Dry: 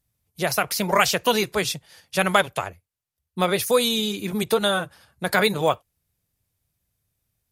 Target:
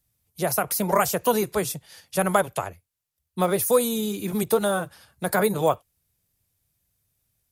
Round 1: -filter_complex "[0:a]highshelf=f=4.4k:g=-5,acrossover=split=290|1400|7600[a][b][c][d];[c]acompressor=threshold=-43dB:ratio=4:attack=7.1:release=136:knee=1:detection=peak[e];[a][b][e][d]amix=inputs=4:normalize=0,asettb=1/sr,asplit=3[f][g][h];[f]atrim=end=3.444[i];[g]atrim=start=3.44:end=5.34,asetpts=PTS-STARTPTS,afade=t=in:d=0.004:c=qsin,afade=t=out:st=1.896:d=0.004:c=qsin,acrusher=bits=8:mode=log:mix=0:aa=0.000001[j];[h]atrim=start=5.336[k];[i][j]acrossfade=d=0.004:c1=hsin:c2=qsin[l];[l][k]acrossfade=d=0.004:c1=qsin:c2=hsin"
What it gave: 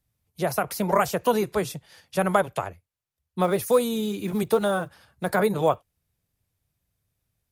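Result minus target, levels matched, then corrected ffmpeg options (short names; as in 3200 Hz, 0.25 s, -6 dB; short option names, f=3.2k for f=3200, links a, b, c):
8000 Hz band -7.0 dB
-filter_complex "[0:a]highshelf=f=4.4k:g=5,acrossover=split=290|1400|7600[a][b][c][d];[c]acompressor=threshold=-43dB:ratio=4:attack=7.1:release=136:knee=1:detection=peak[e];[a][b][e][d]amix=inputs=4:normalize=0,asettb=1/sr,asplit=3[f][g][h];[f]atrim=end=3.444[i];[g]atrim=start=3.44:end=5.34,asetpts=PTS-STARTPTS,afade=t=in:d=0.004:c=qsin,afade=t=out:st=1.896:d=0.004:c=qsin,acrusher=bits=8:mode=log:mix=0:aa=0.000001[j];[h]atrim=start=5.336[k];[i][j]acrossfade=d=0.004:c1=hsin:c2=qsin[l];[l][k]acrossfade=d=0.004:c1=qsin:c2=hsin"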